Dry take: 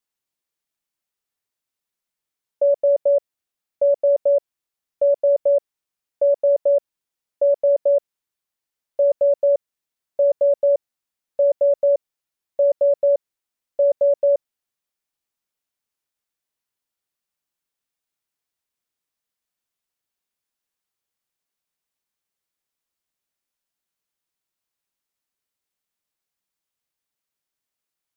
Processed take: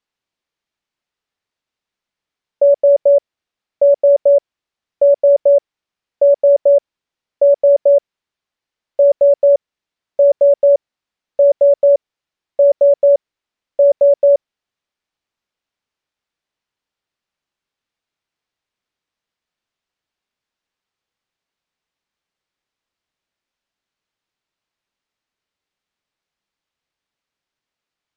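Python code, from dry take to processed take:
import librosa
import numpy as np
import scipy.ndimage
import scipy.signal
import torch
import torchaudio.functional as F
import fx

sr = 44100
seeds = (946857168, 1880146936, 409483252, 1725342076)

y = scipy.signal.sosfilt(scipy.signal.butter(2, 4500.0, 'lowpass', fs=sr, output='sos'), x)
y = F.gain(torch.from_numpy(y), 6.5).numpy()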